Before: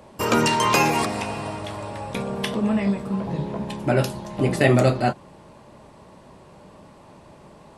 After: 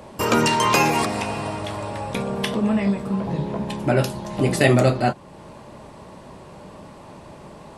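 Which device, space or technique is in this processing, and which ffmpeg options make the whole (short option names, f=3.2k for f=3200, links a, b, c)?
parallel compression: -filter_complex "[0:a]asplit=2[a][b];[b]acompressor=threshold=-36dB:ratio=6,volume=-0.5dB[c];[a][c]amix=inputs=2:normalize=0,asplit=3[d][e][f];[d]afade=t=out:st=4.31:d=0.02[g];[e]adynamicequalizer=threshold=0.0158:dfrequency=3200:dqfactor=0.7:tfrequency=3200:tqfactor=0.7:attack=5:release=100:ratio=0.375:range=3:mode=boostabove:tftype=highshelf,afade=t=in:st=4.31:d=0.02,afade=t=out:st=4.73:d=0.02[h];[f]afade=t=in:st=4.73:d=0.02[i];[g][h][i]amix=inputs=3:normalize=0"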